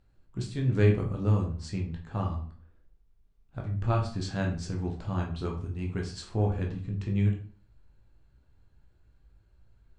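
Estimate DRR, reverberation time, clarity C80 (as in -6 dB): 0.0 dB, 0.45 s, 12.5 dB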